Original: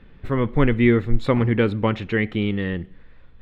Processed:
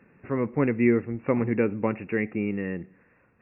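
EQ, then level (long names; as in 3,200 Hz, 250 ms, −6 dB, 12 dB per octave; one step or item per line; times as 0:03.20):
linear-phase brick-wall low-pass 2,800 Hz
dynamic equaliser 1,400 Hz, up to −5 dB, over −38 dBFS, Q 0.97
high-pass filter 170 Hz 12 dB per octave
−3.0 dB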